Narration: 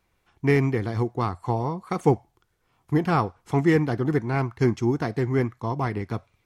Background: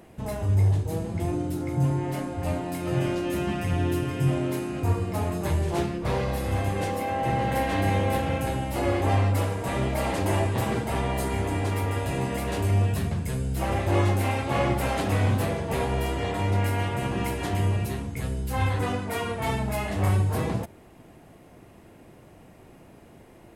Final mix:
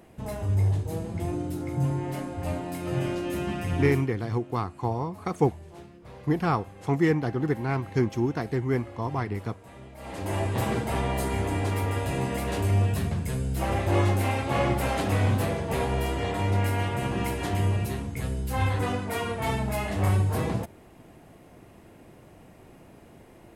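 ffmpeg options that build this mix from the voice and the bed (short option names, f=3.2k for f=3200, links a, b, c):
-filter_complex "[0:a]adelay=3350,volume=-3dB[a];[1:a]volume=16.5dB,afade=t=out:st=3.88:d=0.21:silence=0.141254,afade=t=in:st=9.97:d=0.65:silence=0.112202[b];[a][b]amix=inputs=2:normalize=0"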